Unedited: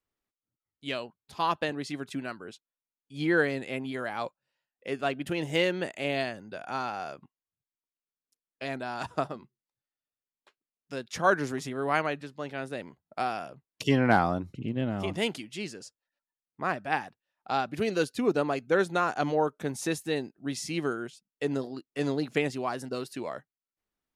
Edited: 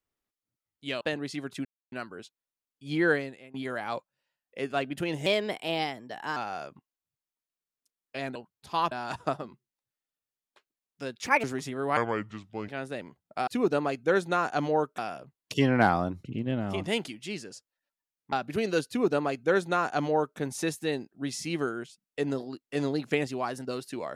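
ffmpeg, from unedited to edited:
-filter_complex "[0:a]asplit=15[a][b][c][d][e][f][g][h][i][j][k][l][m][n][o];[a]atrim=end=1.012[p];[b]atrim=start=1.568:end=2.21,asetpts=PTS-STARTPTS,afade=t=out:st=0.638:d=0.004:c=hsin,apad=pad_dur=0.27[q];[c]atrim=start=2.21:end=3.83,asetpts=PTS-STARTPTS,afade=t=in:d=0.004:c=hsin,afade=t=out:st=1.22:d=0.4:c=qua:silence=0.105925[r];[d]atrim=start=3.83:end=5.554,asetpts=PTS-STARTPTS,afade=t=in:d=0.004:c=hsin:silence=0.105925[s];[e]atrim=start=5.55:end=6.83,asetpts=PTS-STARTPTS,asetrate=51156,aresample=44100,atrim=end_sample=48662,asetpts=PTS-STARTPTS[t];[f]atrim=start=6.826:end=8.822[u];[g]atrim=start=1.008:end=1.572[v];[h]atrim=start=8.818:end=11.174[w];[i]atrim=start=11.17:end=11.43,asetpts=PTS-STARTPTS,asetrate=66150,aresample=44100[x];[j]atrim=start=11.426:end=11.964[y];[k]atrim=start=11.96:end=12.49,asetpts=PTS-STARTPTS,asetrate=32634,aresample=44100,atrim=end_sample=31585,asetpts=PTS-STARTPTS[z];[l]atrim=start=12.486:end=13.282[aa];[m]atrim=start=18.108:end=19.622[ab];[n]atrim=start=13.278:end=16.622[ac];[o]atrim=start=17.558[ad];[q][r][s]concat=n=3:v=0:a=1[ae];[p][ae]acrossfade=d=0.004:c1=hsin:c2=hsin[af];[af][t]acrossfade=d=0.004:c1=hsin:c2=hsin[ag];[ag][u]acrossfade=d=0.004:c1=hsin:c2=hsin[ah];[ah][v]acrossfade=d=0.004:c1=hsin:c2=hsin[ai];[ai][w]acrossfade=d=0.004:c1=hsin:c2=hsin[aj];[aj][x]acrossfade=d=0.004:c1=hsin:c2=hsin[ak];[ak][y]acrossfade=d=0.004:c1=hsin:c2=hsin[al];[al][z]acrossfade=d=0.004:c1=hsin:c2=hsin[am];[am][aa]acrossfade=d=0.004:c1=hsin:c2=hsin[an];[an][ab]acrossfade=d=0.004:c1=hsin:c2=hsin[ao];[ao][ac]acrossfade=d=0.004:c1=hsin:c2=hsin[ap];[ap][ad]acrossfade=d=0.004:c1=hsin:c2=hsin"

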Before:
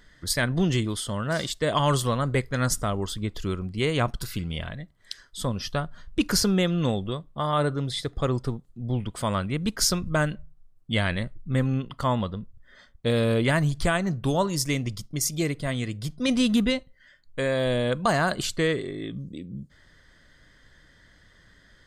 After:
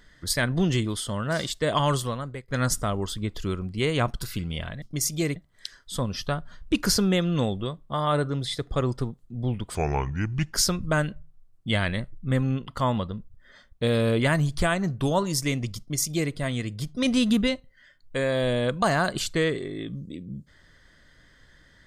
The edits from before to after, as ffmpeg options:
-filter_complex "[0:a]asplit=6[a][b][c][d][e][f];[a]atrim=end=2.48,asetpts=PTS-STARTPTS,afade=t=out:st=1.8:d=0.68:silence=0.0749894[g];[b]atrim=start=2.48:end=4.822,asetpts=PTS-STARTPTS,afade=t=in:d=0.004:c=hsin:silence=0.0749894[h];[c]atrim=start=15.018:end=15.562[i];[d]atrim=start=4.818:end=9.214[j];[e]atrim=start=9.21:end=9.77,asetpts=PTS-STARTPTS,asetrate=31311,aresample=44100,atrim=end_sample=34783,asetpts=PTS-STARTPTS[k];[f]atrim=start=9.766[l];[g][h]concat=n=2:v=0:a=1[m];[m][i]acrossfade=d=0.004:c1=hsin:c2=hsin[n];[n][j]acrossfade=d=0.004:c1=hsin:c2=hsin[o];[o][k]acrossfade=d=0.004:c1=hsin:c2=hsin[p];[p][l]acrossfade=d=0.004:c1=hsin:c2=hsin"

